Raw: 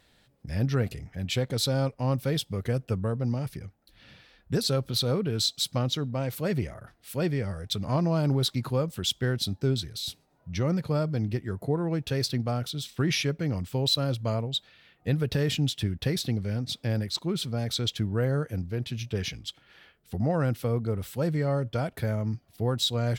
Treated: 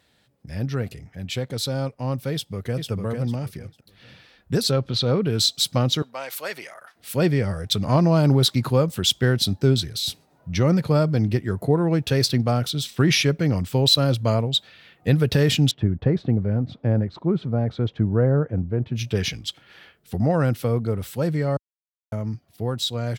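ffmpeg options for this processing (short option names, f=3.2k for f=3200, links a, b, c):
-filter_complex "[0:a]asplit=2[a][b];[b]afade=t=in:st=2.32:d=0.01,afade=t=out:st=2.9:d=0.01,aecho=0:1:450|900|1350:0.562341|0.112468|0.0224937[c];[a][c]amix=inputs=2:normalize=0,asettb=1/sr,asplit=3[d][e][f];[d]atrim=end=4.714[g];[e]atrim=start=4.71:end=5.22,asetpts=PTS-STARTPTS,afade=t=in:d=0.004:c=qsin,afade=t=out:st=0.506:d=0.004:c=qsin,lowpass=4.4k[h];[f]atrim=start=5.216[i];[g][h]acrossfade=d=0.004:c1=hsin:c2=qsin[j];[j][i]acrossfade=d=0.004:c1=qsin:c2=hsin,asettb=1/sr,asplit=3[k][l][m];[k]atrim=end=6.024[n];[l]atrim=start=6.02:end=6.96,asetpts=PTS-STARTPTS,afade=t=in:d=0.004:c=qsin,afade=t=out:st=0.936:d=0.004:c=qsin,highpass=890[o];[m]atrim=start=6.956[p];[n][o]acrossfade=d=0.004:c1=hsin:c2=qsin[q];[q][p]acrossfade=d=0.004:c1=qsin:c2=hsin,asettb=1/sr,asplit=3[r][s][t];[r]atrim=end=15.714[u];[s]atrim=start=15.71:end=18.96,asetpts=PTS-STARTPTS,afade=t=in:d=0.004:c=qsin,afade=t=out:st=3.246:d=0.004:c=qsin,lowpass=1.1k[v];[t]atrim=start=18.956[w];[u][v]acrossfade=d=0.004:c1=hsin:c2=qsin[x];[x][w]acrossfade=d=0.004:c1=qsin:c2=hsin,asplit=3[y][z][aa];[y]atrim=end=21.57,asetpts=PTS-STARTPTS,afade=t=out:st=21.566:d=0.004:c=hsin[ab];[z]atrim=start=21.57:end=22.12,asetpts=PTS-STARTPTS,volume=0[ac];[aa]atrim=start=22.12,asetpts=PTS-STARTPTS,afade=t=in:d=0.004:c=hsin[ad];[ab][ac][ad]concat=n=3:v=0:a=1,highpass=67,dynaudnorm=f=530:g=17:m=8dB"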